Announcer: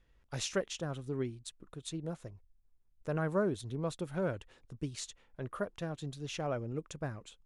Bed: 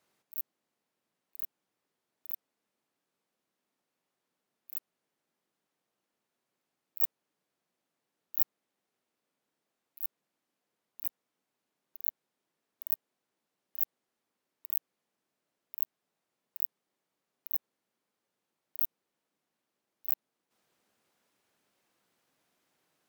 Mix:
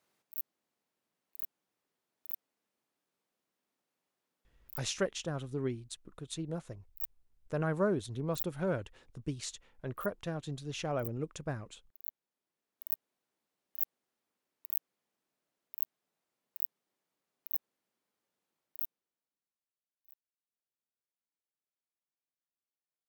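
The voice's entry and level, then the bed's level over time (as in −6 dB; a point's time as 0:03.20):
4.45 s, +1.0 dB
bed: 0:04.66 −2 dB
0:04.87 −10 dB
0:12.19 −10 dB
0:13.04 −2.5 dB
0:18.60 −2.5 dB
0:19.98 −29 dB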